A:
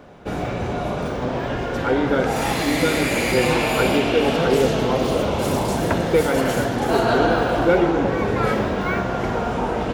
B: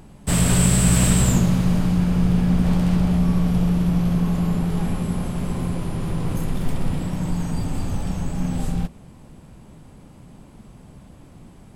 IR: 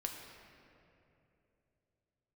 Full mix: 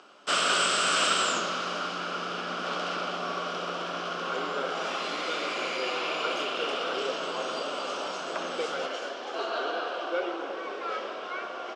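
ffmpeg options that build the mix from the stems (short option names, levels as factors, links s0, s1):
-filter_complex "[0:a]adelay=2450,volume=0.188,asplit=2[s0][s1];[s1]volume=0.708[s2];[1:a]equalizer=f=1400:t=o:w=0.27:g=11,volume=1.06[s3];[2:a]atrim=start_sample=2205[s4];[s2][s4]afir=irnorm=-1:irlink=0[s5];[s0][s3][s5]amix=inputs=3:normalize=0,highpass=f=410:w=0.5412,highpass=f=410:w=1.3066,equalizer=f=450:t=q:w=4:g=-4,equalizer=f=880:t=q:w=4:g=-7,equalizer=f=1200:t=q:w=4:g=6,equalizer=f=1900:t=q:w=4:g=-6,equalizer=f=3000:t=q:w=4:g=7,equalizer=f=5300:t=q:w=4:g=4,lowpass=f=6100:w=0.5412,lowpass=f=6100:w=1.3066"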